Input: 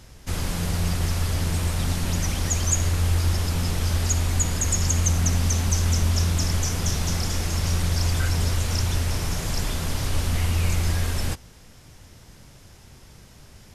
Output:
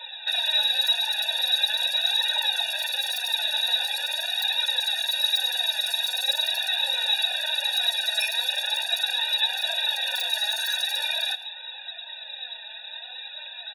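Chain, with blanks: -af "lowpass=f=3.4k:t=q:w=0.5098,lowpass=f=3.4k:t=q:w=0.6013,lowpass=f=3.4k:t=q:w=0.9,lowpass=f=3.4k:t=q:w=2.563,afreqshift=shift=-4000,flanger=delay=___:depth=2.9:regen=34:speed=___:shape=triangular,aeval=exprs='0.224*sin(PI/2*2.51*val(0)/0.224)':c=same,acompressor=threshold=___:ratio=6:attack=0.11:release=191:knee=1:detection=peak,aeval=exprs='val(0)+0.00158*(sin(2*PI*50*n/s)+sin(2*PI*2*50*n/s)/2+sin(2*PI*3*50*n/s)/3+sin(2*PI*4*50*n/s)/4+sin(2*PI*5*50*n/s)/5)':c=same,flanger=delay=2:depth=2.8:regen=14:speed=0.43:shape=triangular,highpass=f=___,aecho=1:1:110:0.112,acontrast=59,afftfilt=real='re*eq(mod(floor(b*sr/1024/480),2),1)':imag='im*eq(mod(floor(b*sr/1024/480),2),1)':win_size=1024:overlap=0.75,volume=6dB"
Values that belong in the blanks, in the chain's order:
2.1, 0.91, -22dB, 390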